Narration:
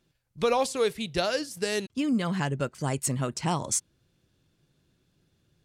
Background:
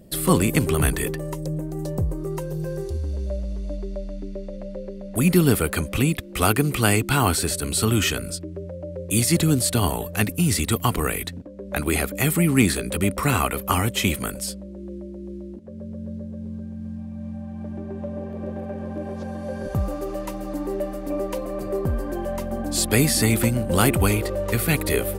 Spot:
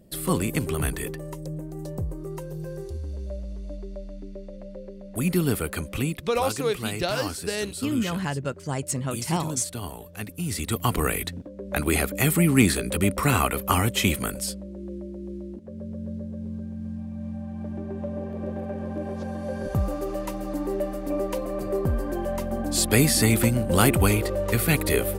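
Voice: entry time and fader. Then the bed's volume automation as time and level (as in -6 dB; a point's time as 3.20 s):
5.85 s, 0.0 dB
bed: 6.05 s -6 dB
6.50 s -13 dB
10.21 s -13 dB
10.99 s -0.5 dB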